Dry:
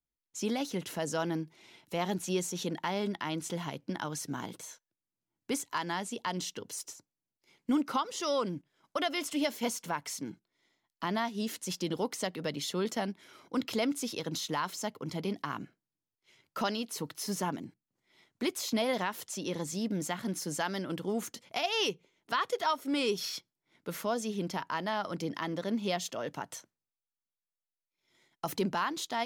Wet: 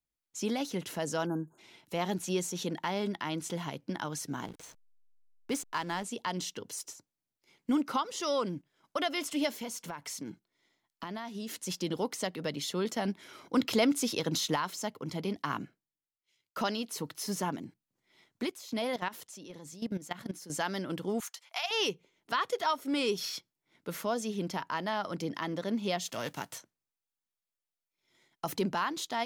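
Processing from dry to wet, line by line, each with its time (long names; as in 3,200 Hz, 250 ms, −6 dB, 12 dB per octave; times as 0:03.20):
0:01.26–0:01.58: time-frequency box erased 1,700–6,400 Hz
0:04.46–0:06.04: slack as between gear wheels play −40.5 dBFS
0:09.57–0:11.51: downward compressor, threshold −35 dBFS
0:13.05–0:14.56: clip gain +4.5 dB
0:15.36–0:16.57: multiband upward and downward expander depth 70%
0:18.44–0:20.50: output level in coarse steps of 16 dB
0:21.20–0:21.71: high-pass filter 810 Hz 24 dB per octave
0:26.07–0:26.57: spectral envelope flattened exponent 0.6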